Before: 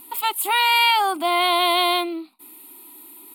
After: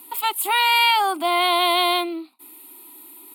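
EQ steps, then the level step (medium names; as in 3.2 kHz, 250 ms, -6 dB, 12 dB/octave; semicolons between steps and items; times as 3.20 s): high-pass 240 Hz 24 dB/octave; 0.0 dB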